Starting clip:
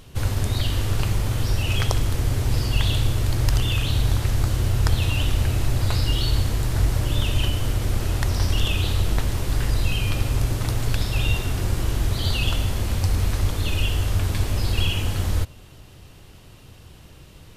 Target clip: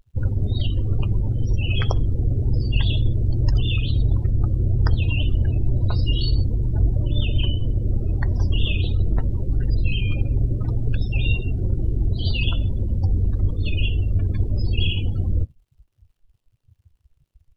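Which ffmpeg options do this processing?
-af "acrusher=bits=8:dc=4:mix=0:aa=0.000001,afftdn=nr=35:nf=-26,volume=1.19"

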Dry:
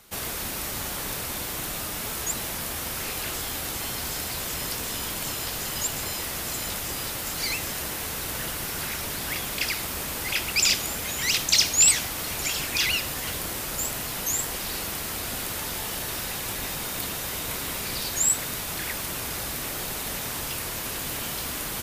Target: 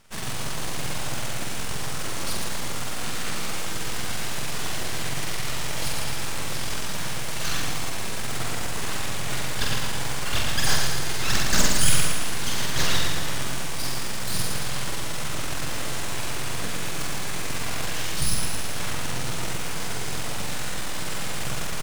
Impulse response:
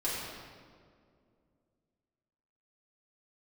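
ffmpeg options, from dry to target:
-filter_complex "[0:a]highshelf=f=7500:g=-9.5,asetrate=29433,aresample=44100,atempo=1.49831,aeval=exprs='abs(val(0))':c=same,asplit=2[s0][s1];[s1]acrusher=bits=4:mix=0:aa=0.000001,volume=0.355[s2];[s0][s2]amix=inputs=2:normalize=0,equalizer=f=130:t=o:w=0.7:g=10,asplit=2[s3][s4];[s4]adelay=46,volume=0.708[s5];[s3][s5]amix=inputs=2:normalize=0,asplit=2[s6][s7];[s7]aecho=0:1:113|226|339|452|565|678|791|904:0.596|0.34|0.194|0.11|0.0629|0.0358|0.0204|0.0116[s8];[s6][s8]amix=inputs=2:normalize=0"

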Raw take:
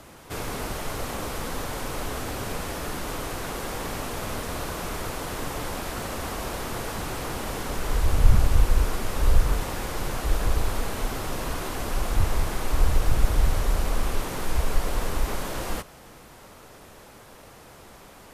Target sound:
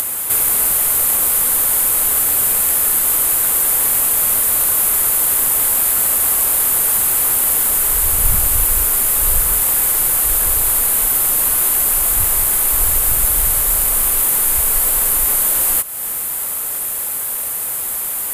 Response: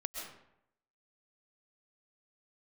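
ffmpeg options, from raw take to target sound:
-af "aexciter=amount=12.7:drive=3:freq=8000,acompressor=mode=upward:threshold=0.1:ratio=2.5,tiltshelf=f=750:g=-6,volume=1.33"

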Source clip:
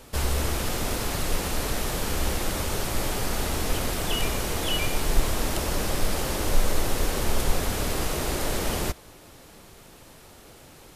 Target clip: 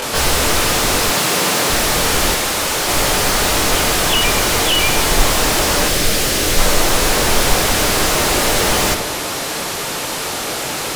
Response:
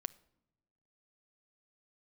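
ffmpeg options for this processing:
-filter_complex "[0:a]asettb=1/sr,asplit=3[s0][s1][s2];[s0]atrim=end=2.324[s3];[s1]atrim=start=2.32:end=2.87,asetpts=PTS-STARTPTS,afade=t=in:d=0.004:c=qsin,afade=t=out:st=0.546:d=0.004:c=qsin,acrossover=split=240|960[s4][s5][s6];[s4]acompressor=threshold=0.01:ratio=4[s7];[s5]acompressor=threshold=0.00501:ratio=4[s8];[s6]acompressor=threshold=0.00794:ratio=4[s9];[s7][s8][s9]amix=inputs=3:normalize=0[s10];[s2]atrim=start=2.866[s11];[s3][s10]acrossfade=d=0.004:c1=hsin:c2=qsin[s12];[s12][s11]acrossfade=d=0.004:c1=qsin:c2=hsin,asplit=2[s13][s14];[s14]bass=f=250:g=3,treble=f=4000:g=7[s15];[1:a]atrim=start_sample=2205,adelay=22[s16];[s15][s16]afir=irnorm=-1:irlink=0,volume=3.16[s17];[s13][s17]amix=inputs=2:normalize=0,acompressor=mode=upward:threshold=0.0112:ratio=2.5,asplit=2[s18][s19];[s19]highpass=f=720:p=1,volume=31.6,asoftclip=type=tanh:threshold=0.473[s20];[s18][s20]amix=inputs=2:normalize=0,lowpass=f=3500:p=1,volume=0.501,asettb=1/sr,asplit=3[s21][s22][s23];[s21]atrim=end=1.124[s24];[s22]atrim=start=1.12:end=1.7,asetpts=PTS-STARTPTS,afade=t=in:d=0.004:c=qsin,afade=t=out:st=0.576:d=0.004:c=qsin,highpass=f=120:w=0.5412,highpass=f=120:w=1.3066[s25];[s23]atrim=start=1.696[s26];[s24][s25]acrossfade=d=0.004:c1=hsin:c2=qsin[s27];[s27][s26]acrossfade=d=0.004:c1=qsin:c2=hsin,asettb=1/sr,asplit=3[s28][s29][s30];[s28]atrim=end=5.884[s31];[s29]atrim=start=5.88:end=6.59,asetpts=PTS-STARTPTS,afade=t=in:d=0.004:c=qsin,afade=t=out:st=0.706:d=0.004:c=qsin,equalizer=f=930:t=o:w=1:g=-8[s32];[s30]atrim=start=6.586[s33];[s31][s32]acrossfade=d=0.004:c1=hsin:c2=qsin[s34];[s34][s33]acrossfade=d=0.004:c1=qsin:c2=hsin"

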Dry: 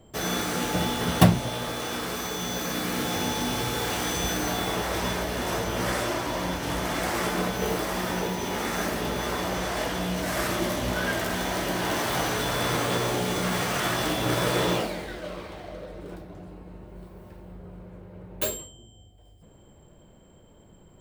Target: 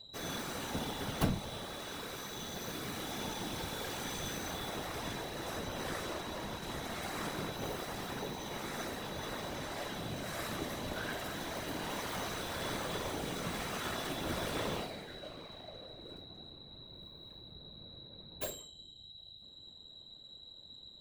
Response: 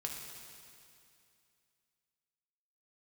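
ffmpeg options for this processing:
-af "aeval=exprs='(tanh(4.47*val(0)+0.5)-tanh(0.5))/4.47':c=same,aeval=exprs='val(0)+0.00891*sin(2*PI*3900*n/s)':c=same,afftfilt=real='hypot(re,im)*cos(2*PI*random(0))':imag='hypot(re,im)*sin(2*PI*random(1))':win_size=512:overlap=0.75,volume=0.631"

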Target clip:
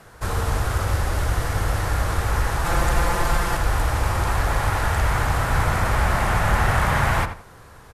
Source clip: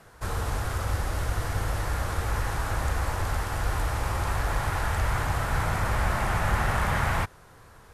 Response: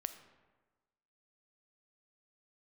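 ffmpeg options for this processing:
-filter_complex "[0:a]asettb=1/sr,asplit=3[s0][s1][s2];[s0]atrim=end=2.644[s3];[s1]atrim=start=2.64:end=3.57,asetpts=PTS-STARTPTS,afade=t=in:d=0.004:c=qsin,afade=t=out:st=0.926:d=0.004:c=qsin,aecho=1:1:5.8:0.99,atrim=end_sample=41013[s4];[s2]atrim=start=3.566[s5];[s3][s4]acrossfade=d=0.004:c1=hsin:c2=qsin[s6];[s6][s5]acrossfade=d=0.004:c1=qsin:c2=hsin,asplit=2[s7][s8];[s8]adelay=83,lowpass=f=2800:p=1,volume=0.355,asplit=2[s9][s10];[s10]adelay=83,lowpass=f=2800:p=1,volume=0.26,asplit=2[s11][s12];[s12]adelay=83,lowpass=f=2800:p=1,volume=0.26[s13];[s7][s9][s11][s13]amix=inputs=4:normalize=0,volume=1.88"

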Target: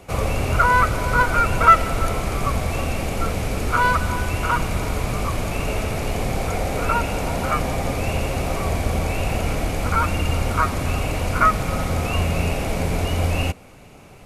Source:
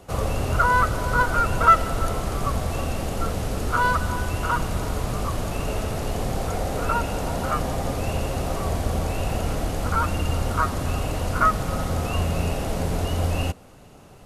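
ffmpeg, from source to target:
-af "equalizer=f=2300:t=o:w=0.26:g=11.5,volume=1.33"

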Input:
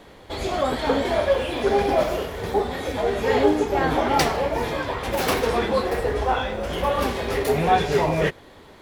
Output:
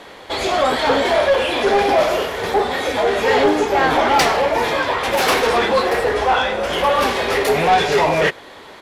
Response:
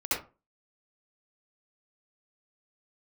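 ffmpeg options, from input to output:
-filter_complex "[0:a]aresample=32000,aresample=44100,asplit=2[s0][s1];[s1]highpass=f=720:p=1,volume=7.08,asoftclip=type=tanh:threshold=0.531[s2];[s0][s2]amix=inputs=2:normalize=0,lowpass=f=6400:p=1,volume=0.501"

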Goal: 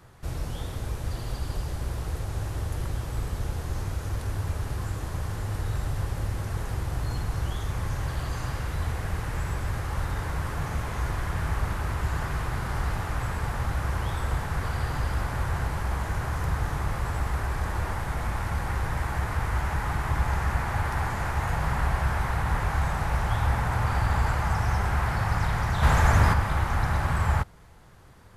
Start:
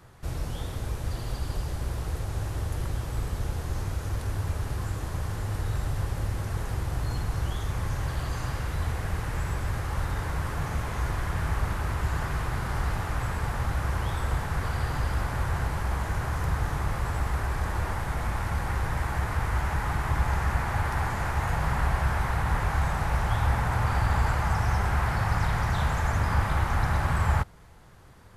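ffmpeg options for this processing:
-filter_complex "[0:a]asplit=3[s0][s1][s2];[s0]afade=t=out:st=25.82:d=0.02[s3];[s1]acontrast=71,afade=t=in:st=25.82:d=0.02,afade=t=out:st=26.32:d=0.02[s4];[s2]afade=t=in:st=26.32:d=0.02[s5];[s3][s4][s5]amix=inputs=3:normalize=0"

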